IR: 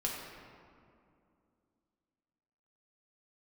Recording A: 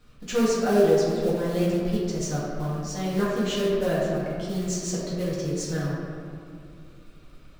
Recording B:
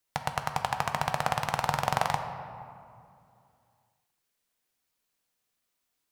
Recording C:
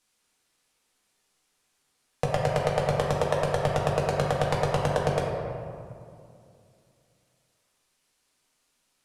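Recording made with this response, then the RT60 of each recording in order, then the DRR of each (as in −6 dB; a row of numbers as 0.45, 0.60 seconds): C; 2.5, 2.5, 2.5 seconds; −8.5, 5.0, −3.5 decibels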